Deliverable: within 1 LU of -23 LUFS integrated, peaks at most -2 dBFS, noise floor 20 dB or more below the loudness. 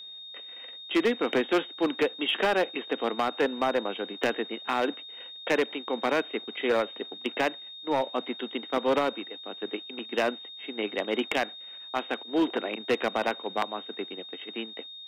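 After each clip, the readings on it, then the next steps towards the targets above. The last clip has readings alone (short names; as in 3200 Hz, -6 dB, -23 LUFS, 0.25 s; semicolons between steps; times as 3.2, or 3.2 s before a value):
clipped 1.0%; flat tops at -18.5 dBFS; steady tone 3700 Hz; tone level -41 dBFS; loudness -29.5 LUFS; peak -18.5 dBFS; loudness target -23.0 LUFS
-> clip repair -18.5 dBFS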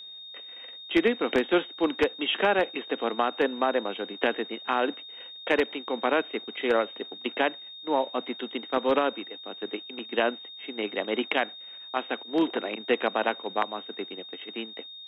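clipped 0.0%; steady tone 3700 Hz; tone level -41 dBFS
-> notch 3700 Hz, Q 30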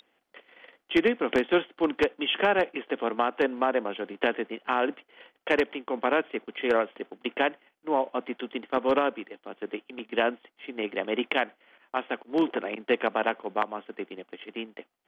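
steady tone none; loudness -28.5 LUFS; peak -9.5 dBFS; loudness target -23.0 LUFS
-> gain +5.5 dB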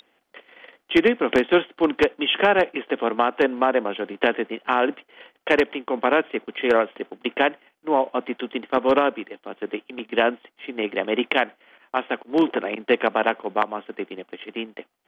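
loudness -23.0 LUFS; peak -4.0 dBFS; noise floor -70 dBFS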